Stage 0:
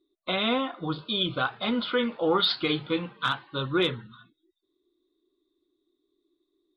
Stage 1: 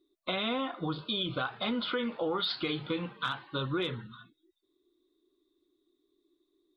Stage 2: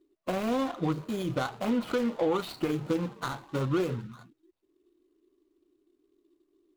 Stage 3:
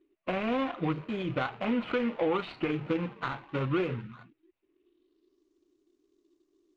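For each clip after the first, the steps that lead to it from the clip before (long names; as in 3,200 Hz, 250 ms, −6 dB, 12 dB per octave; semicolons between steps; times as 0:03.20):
in parallel at +1 dB: brickwall limiter −22 dBFS, peak gain reduction 8.5 dB; on the sum: downward compressor 4 to 1, threshold −23 dBFS, peak gain reduction 7 dB; level −6 dB
running median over 25 samples; level +5.5 dB
low-pass filter sweep 2,500 Hz → 6,400 Hz, 0:04.76–0:05.46; level −1.5 dB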